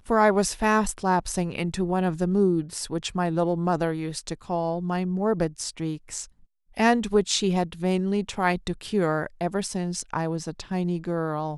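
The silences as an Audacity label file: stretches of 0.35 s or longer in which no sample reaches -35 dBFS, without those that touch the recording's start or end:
6.250000	6.770000	silence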